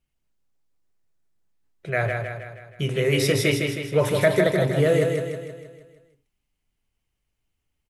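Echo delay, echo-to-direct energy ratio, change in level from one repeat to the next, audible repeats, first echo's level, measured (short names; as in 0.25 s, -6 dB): 0.158 s, -3.0 dB, -5.5 dB, 6, -4.5 dB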